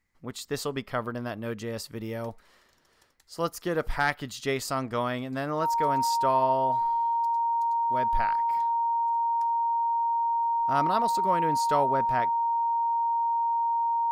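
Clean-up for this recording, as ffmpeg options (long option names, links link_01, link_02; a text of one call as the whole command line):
ffmpeg -i in.wav -af "bandreject=frequency=930:width=30" out.wav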